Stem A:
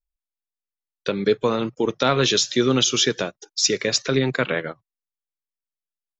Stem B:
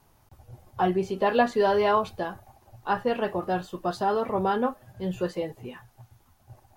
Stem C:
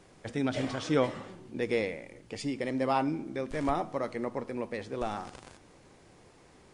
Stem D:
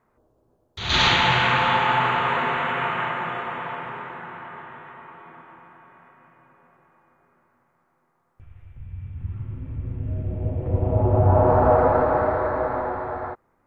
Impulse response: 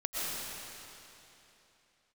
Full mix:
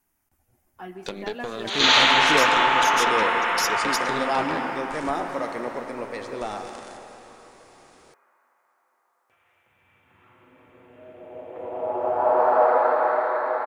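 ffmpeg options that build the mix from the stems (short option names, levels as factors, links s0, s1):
-filter_complex "[0:a]acompressor=threshold=0.0794:ratio=6,aeval=exprs='0.355*(cos(1*acos(clip(val(0)/0.355,-1,1)))-cos(1*PI/2))+0.0891*(cos(4*acos(clip(val(0)/0.355,-1,1)))-cos(4*PI/2))':c=same,volume=0.501[s0];[1:a]equalizer=f=125:t=o:w=1:g=-10,equalizer=f=250:t=o:w=1:g=5,equalizer=f=500:t=o:w=1:g=-11,equalizer=f=1000:t=o:w=1:g=-7,equalizer=f=2000:t=o:w=1:g=4,equalizer=f=4000:t=o:w=1:g=-12,volume=0.355,asplit=2[s1][s2];[s2]volume=0.237[s3];[2:a]adelay=1400,volume=1.12,asplit=2[s4][s5];[s5]volume=0.335[s6];[3:a]highpass=540,adelay=900,volume=1.19[s7];[4:a]atrim=start_sample=2205[s8];[s3][s6]amix=inputs=2:normalize=0[s9];[s9][s8]afir=irnorm=-1:irlink=0[s10];[s0][s1][s4][s7][s10]amix=inputs=5:normalize=0,bass=f=250:g=-8,treble=f=4000:g=4"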